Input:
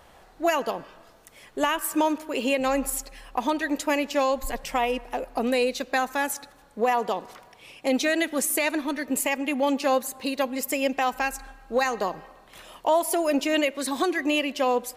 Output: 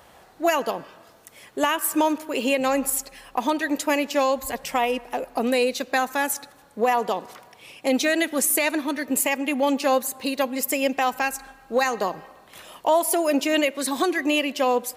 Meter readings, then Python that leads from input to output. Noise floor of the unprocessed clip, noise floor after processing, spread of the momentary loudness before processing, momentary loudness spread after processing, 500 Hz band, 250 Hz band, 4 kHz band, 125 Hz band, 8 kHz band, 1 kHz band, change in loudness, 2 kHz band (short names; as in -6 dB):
-54 dBFS, -53 dBFS, 8 LU, 8 LU, +2.0 dB, +2.0 dB, +2.5 dB, n/a, +4.5 dB, +2.0 dB, +2.5 dB, +2.0 dB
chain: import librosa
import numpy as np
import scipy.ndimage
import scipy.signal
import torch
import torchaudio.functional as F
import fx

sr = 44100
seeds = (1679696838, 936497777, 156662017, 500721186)

y = scipy.signal.sosfilt(scipy.signal.butter(2, 73.0, 'highpass', fs=sr, output='sos'), x)
y = fx.high_shelf(y, sr, hz=10000.0, db=5.5)
y = y * librosa.db_to_amplitude(2.0)